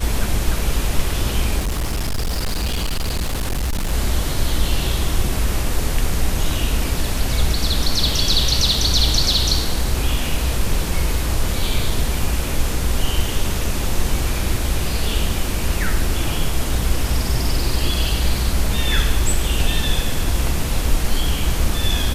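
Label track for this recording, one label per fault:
1.580000	3.930000	clipped -17.5 dBFS
11.900000	11.900000	gap 2.7 ms

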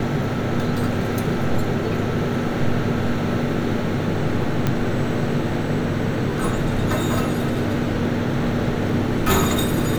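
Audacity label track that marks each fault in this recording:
4.670000	4.670000	pop -7 dBFS

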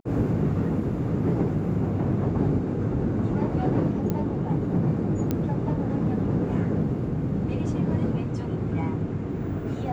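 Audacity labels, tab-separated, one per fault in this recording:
4.100000	4.100000	pop -15 dBFS
5.310000	5.310000	pop -13 dBFS

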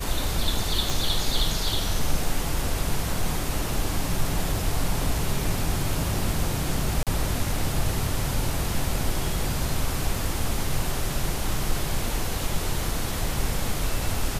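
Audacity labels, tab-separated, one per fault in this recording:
0.900000	0.900000	pop
7.030000	7.070000	gap 37 ms

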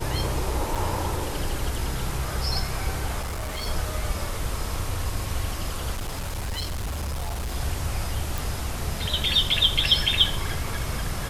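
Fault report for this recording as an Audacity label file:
0.750000	0.760000	gap 6.5 ms
3.210000	3.670000	clipped -27 dBFS
5.940000	7.560000	clipped -26 dBFS
8.380000	8.380000	pop

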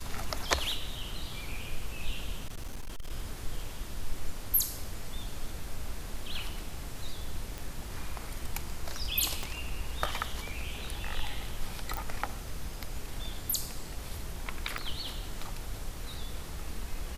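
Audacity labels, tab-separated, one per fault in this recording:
2.470000	3.110000	clipped -33.5 dBFS
7.580000	7.580000	pop
9.430000	9.430000	pop
11.970000	11.970000	pop
14.780000	14.780000	pop -21 dBFS

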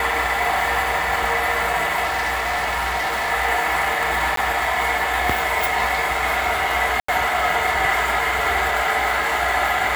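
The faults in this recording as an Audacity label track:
2.040000	3.310000	clipped -18.5 dBFS
4.360000	4.370000	gap 13 ms
7.000000	7.080000	gap 84 ms

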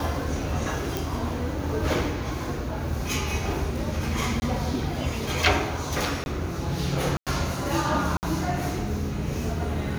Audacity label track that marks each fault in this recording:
0.970000	0.970000	pop
4.400000	4.420000	gap 20 ms
6.240000	6.260000	gap 21 ms
7.170000	7.270000	gap 97 ms
8.170000	8.230000	gap 59 ms

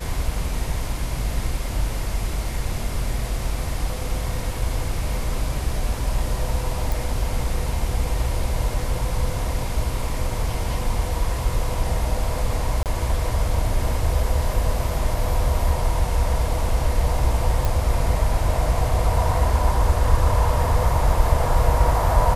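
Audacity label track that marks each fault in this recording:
6.920000	6.920000	pop
12.830000	12.860000	gap 28 ms
17.650000	17.650000	pop

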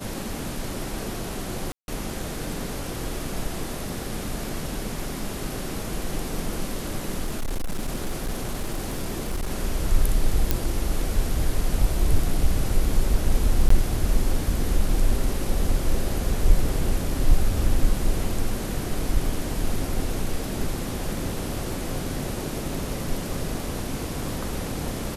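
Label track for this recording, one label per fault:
1.720000	1.880000	gap 0.161 s
7.230000	9.490000	clipped -22.5 dBFS
10.510000	10.510000	pop
13.690000	13.700000	gap 14 ms

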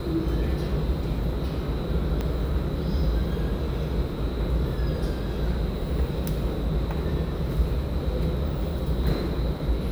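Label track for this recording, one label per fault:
2.210000	2.210000	pop -16 dBFS

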